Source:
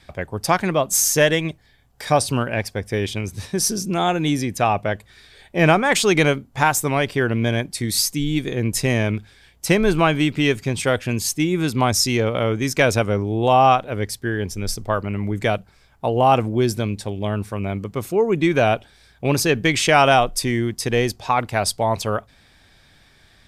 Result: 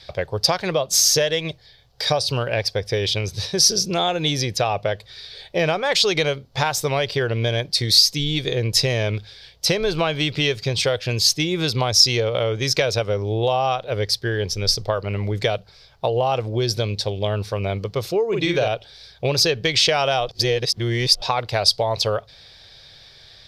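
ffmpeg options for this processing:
-filter_complex "[0:a]asettb=1/sr,asplit=3[s0][s1][s2];[s0]atrim=end=18.284[s3];[s1]atrim=start=18.28:end=18.68,asetpts=PTS-STARTPTS,afade=t=in:d=0.004:c=qsin,afade=t=out:st=0.396:d=0.004:c=qsin,asplit=2[s4][s5];[s5]adelay=46,volume=0.708[s6];[s4][s6]amix=inputs=2:normalize=0,atrim=end_sample=17640[s7];[s2]atrim=start=18.676[s8];[s3][s7]acrossfade=d=0.004:c1=hsin:c2=qsin[s9];[s9][s8]acrossfade=d=0.004:c1=qsin:c2=hsin,asplit=3[s10][s11][s12];[s10]atrim=end=20.292[s13];[s11]atrim=start=20.288:end=21.222,asetpts=PTS-STARTPTS,areverse[s14];[s12]atrim=start=21.218[s15];[s13][s14]acrossfade=d=0.004:c1=hsin:c2=hsin[s16];[s16][s15]acrossfade=d=0.004:c1=hsin:c2=hsin,equalizer=f=125:t=o:w=1:g=6,equalizer=f=250:t=o:w=1:g=-10,equalizer=f=500:t=o:w=1:g=10,equalizer=f=4000:t=o:w=1:g=11,equalizer=f=8000:t=o:w=1:g=-7,acompressor=threshold=0.141:ratio=5,equalizer=f=5200:t=o:w=0.85:g=9.5,volume=0.891"

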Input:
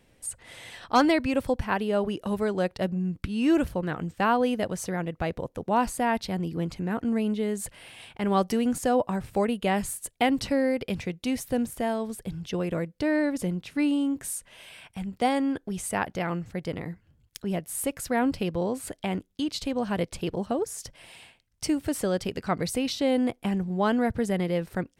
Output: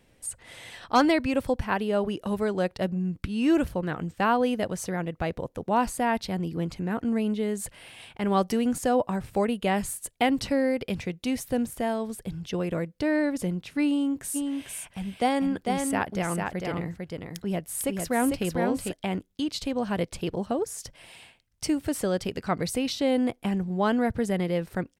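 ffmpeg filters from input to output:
-filter_complex "[0:a]asplit=3[s0][s1][s2];[s0]afade=t=out:st=14.34:d=0.02[s3];[s1]aecho=1:1:449:0.631,afade=t=in:st=14.34:d=0.02,afade=t=out:st=18.91:d=0.02[s4];[s2]afade=t=in:st=18.91:d=0.02[s5];[s3][s4][s5]amix=inputs=3:normalize=0"

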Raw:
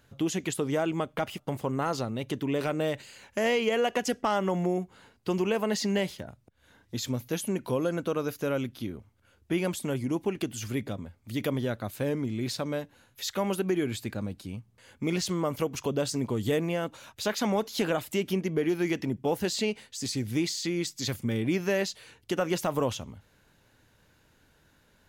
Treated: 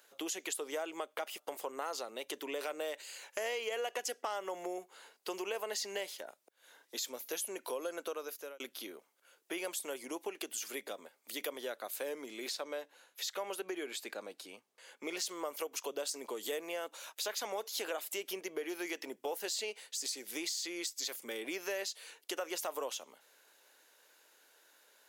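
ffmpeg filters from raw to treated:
-filter_complex "[0:a]asettb=1/sr,asplit=3[s0][s1][s2];[s0]atrim=end=12.494[s3];[s1]atrim=start=12.49:end=15.17,asetpts=PTS-STARTPTS,afade=t=in:d=0.004:c=qsin,afade=t=out:st=2.676:d=0.004:c=qsin,highshelf=f=8000:g=-9.5[s4];[s2]atrim=start=15.166[s5];[s3][s4]acrossfade=d=0.004:c1=hsin:c2=qsin[s6];[s6][s5]acrossfade=d=0.004:c1=qsin:c2=hsin,asplit=2[s7][s8];[s7]atrim=end=8.6,asetpts=PTS-STARTPTS,afade=t=out:st=8.05:d=0.55[s9];[s8]atrim=start=8.6,asetpts=PTS-STARTPTS,afade=t=in:d=0.004:c=hsin[s10];[s9][s10]concat=n=2:v=0:a=1,highpass=f=410:w=0.5412,highpass=f=410:w=1.3066,highshelf=f=5000:g=9.5,acompressor=threshold=0.0141:ratio=2.5,volume=0.841"

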